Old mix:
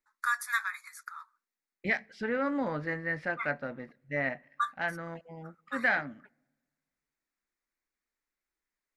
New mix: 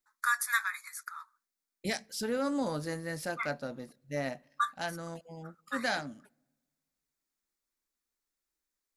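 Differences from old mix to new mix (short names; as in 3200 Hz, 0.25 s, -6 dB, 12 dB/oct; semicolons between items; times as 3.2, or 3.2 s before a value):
first voice: add high shelf 5500 Hz +9 dB; second voice: remove synth low-pass 2000 Hz, resonance Q 3.2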